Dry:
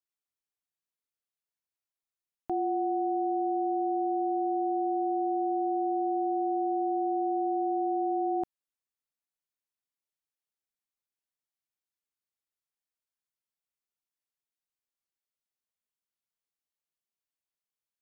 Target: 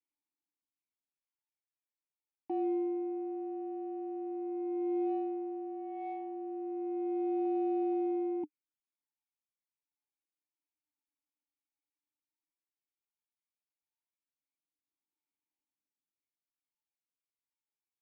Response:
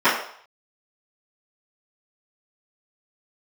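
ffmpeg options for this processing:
-filter_complex "[0:a]aphaser=in_gain=1:out_gain=1:delay=3.6:decay=0.61:speed=0.13:type=sinusoidal,adynamicequalizer=threshold=0.02:dfrequency=700:dqfactor=5.3:tfrequency=700:tqfactor=5.3:attack=5:release=100:ratio=0.375:range=1.5:mode=cutabove:tftype=bell,asplit=2[link_01][link_02];[link_02]asoftclip=type=tanh:threshold=-32dB,volume=-3.5dB[link_03];[link_01][link_03]amix=inputs=2:normalize=0,asplit=3[link_04][link_05][link_06];[link_04]bandpass=frequency=300:width_type=q:width=8,volume=0dB[link_07];[link_05]bandpass=frequency=870:width_type=q:width=8,volume=-6dB[link_08];[link_06]bandpass=frequency=2240:width_type=q:width=8,volume=-9dB[link_09];[link_07][link_08][link_09]amix=inputs=3:normalize=0"

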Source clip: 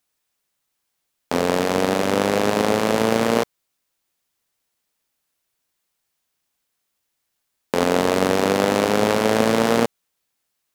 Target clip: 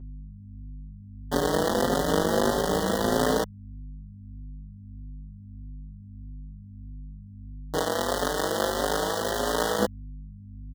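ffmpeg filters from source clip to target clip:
ffmpeg -i in.wav -filter_complex "[0:a]acrusher=bits=5:dc=4:mix=0:aa=0.000001,asuperstop=centerf=2400:order=20:qfactor=2.4,aeval=exprs='val(0)*sin(2*PI*27*n/s)':channel_layout=same,asettb=1/sr,asplit=3[link_01][link_02][link_03];[link_01]atrim=end=7.784[link_04];[link_02]atrim=start=7.78:end=9.79,asetpts=PTS-STARTPTS,afade=type=in:duration=0.004:curve=qsin,afade=type=out:start_time=2.006:duration=0.004:curve=qsin,highpass=frequency=630:poles=1[link_05];[link_03]atrim=start=9.786[link_06];[link_04][link_05]acrossfade=duration=0.004:curve1=hsin:curve2=qsin[link_07];[link_07][link_06]acrossfade=duration=0.004:curve1=qsin:curve2=hsin,aeval=exprs='val(0)+0.0126*(sin(2*PI*50*n/s)+sin(2*PI*2*50*n/s)/2+sin(2*PI*3*50*n/s)/3+sin(2*PI*4*50*n/s)/4+sin(2*PI*5*50*n/s)/5)':channel_layout=same,asplit=2[link_08][link_09];[link_09]adelay=5.3,afreqshift=1.6[link_10];[link_08][link_10]amix=inputs=2:normalize=1,volume=1.5dB" out.wav

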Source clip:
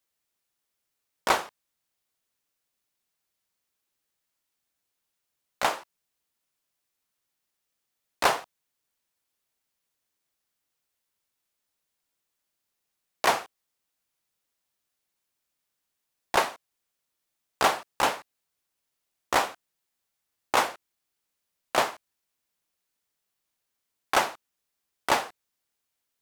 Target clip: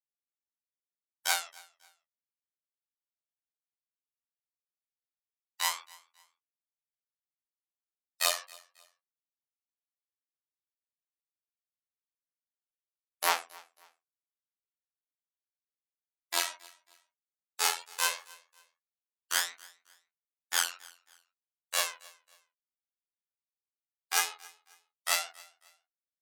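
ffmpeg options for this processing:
ffmpeg -i in.wav -filter_complex "[0:a]afftfilt=real='re*gte(hypot(re,im),0.00398)':imag='im*gte(hypot(re,im),0.00398)':win_size=1024:overlap=0.75,aphaser=in_gain=1:out_gain=1:delay=3.3:decay=0.68:speed=0.15:type=triangular,highshelf=frequency=7600:gain=-5,asplit=2[link_01][link_02];[link_02]acompressor=threshold=-32dB:ratio=16,volume=2.5dB[link_03];[link_01][link_03]amix=inputs=2:normalize=0,aderivative,afftfilt=real='hypot(re,im)*cos(PI*b)':imag='0':win_size=2048:overlap=0.75,flanger=delay=18:depth=5:speed=2.1,asplit=2[link_04][link_05];[link_05]aecho=0:1:271|542:0.0668|0.0214[link_06];[link_04][link_06]amix=inputs=2:normalize=0,volume=9dB" out.wav

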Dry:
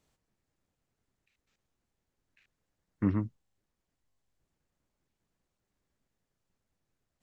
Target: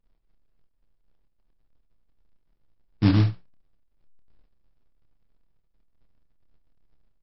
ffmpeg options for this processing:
ffmpeg -i in.wav -af "aemphasis=mode=reproduction:type=riaa,bandreject=frequency=60:width_type=h:width=6,bandreject=frequency=120:width_type=h:width=6,bandreject=frequency=180:width_type=h:width=6,anlmdn=0.0398,highshelf=frequency=2500:gain=-6.5,aecho=1:1:6.7:0.38,aresample=11025,acrusher=bits=3:mode=log:mix=0:aa=0.000001,aresample=44100,aecho=1:1:28|45|74:0.422|0.178|0.141" -ar 48000 -c:a libmp3lame -b:a 32k out.mp3

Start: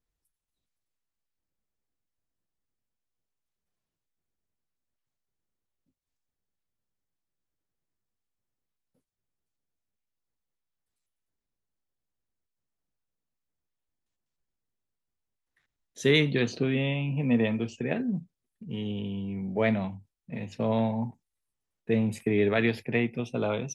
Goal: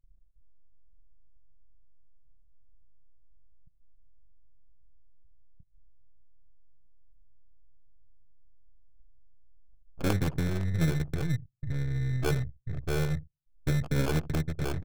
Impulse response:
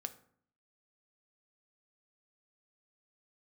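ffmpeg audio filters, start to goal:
-filter_complex "[0:a]asetrate=29433,aresample=44100,atempo=1.49831,aeval=exprs='max(val(0),0)':channel_layout=same,asplit=2[link_01][link_02];[link_02]adelay=128.3,volume=-21dB,highshelf=frequency=4000:gain=-2.89[link_03];[link_01][link_03]amix=inputs=2:normalize=0,asplit=2[link_04][link_05];[link_05]acompressor=mode=upward:threshold=-35dB:ratio=2.5,volume=-2dB[link_06];[link_04][link_06]amix=inputs=2:normalize=0,firequalizer=gain_entry='entry(130,0);entry(230,-19);entry(440,-10);entry(1500,-21);entry(3200,-12);entry(7200,-5)':delay=0.05:min_phase=1,acrossover=split=140[link_07][link_08];[link_07]acompressor=threshold=-40dB:ratio=8[link_09];[link_09][link_08]amix=inputs=2:normalize=0,acrusher=samples=23:mix=1:aa=0.000001,asplit=2[link_10][link_11];[1:a]atrim=start_sample=2205[link_12];[link_11][link_12]afir=irnorm=-1:irlink=0,volume=-7.5dB[link_13];[link_10][link_13]amix=inputs=2:normalize=0,atempo=1.6,anlmdn=0.01,volume=6.5dB"

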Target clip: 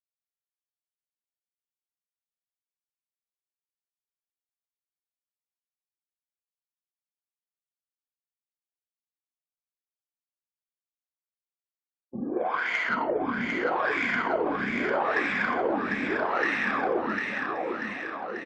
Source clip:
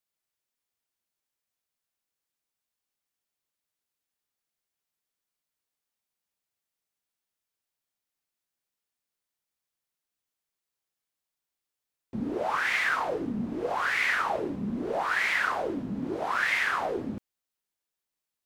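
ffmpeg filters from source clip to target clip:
ffmpeg -i in.wav -filter_complex "[0:a]afftfilt=real='re*pow(10,9/40*sin(2*PI*(1.8*log(max(b,1)*sr/1024/100)/log(2)-(-0.65)*(pts-256)/sr)))':imag='im*pow(10,9/40*sin(2*PI*(1.8*log(max(b,1)*sr/1024/100)/log(2)-(-0.65)*(pts-256)/sr)))':win_size=1024:overlap=0.75,afftfilt=real='re*gte(hypot(re,im),0.00708)':imag='im*gte(hypot(re,im),0.00708)':win_size=1024:overlap=0.75,bass=frequency=250:gain=-6,treble=frequency=4000:gain=-11,acrossover=split=180|590|4800[link_01][link_02][link_03][link_04];[link_02]acontrast=51[link_05];[link_01][link_05][link_03][link_04]amix=inputs=4:normalize=0,aeval=exprs='0.211*(cos(1*acos(clip(val(0)/0.211,-1,1)))-cos(1*PI/2))+0.0188*(cos(3*acos(clip(val(0)/0.211,-1,1)))-cos(3*PI/2))':channel_layout=same,aecho=1:1:750|1388|1929|2390|2781:0.631|0.398|0.251|0.158|0.1" out.wav

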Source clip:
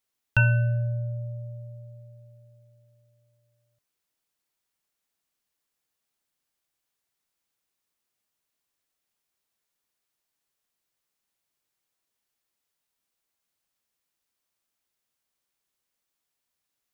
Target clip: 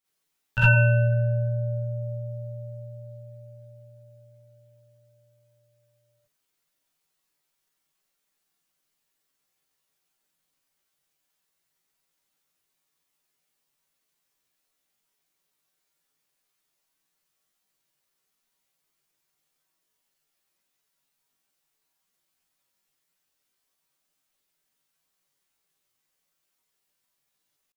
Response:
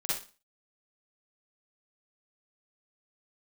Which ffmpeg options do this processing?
-filter_complex "[0:a]atempo=0.61[link_01];[1:a]atrim=start_sample=2205,atrim=end_sample=3969[link_02];[link_01][link_02]afir=irnorm=-1:irlink=0"

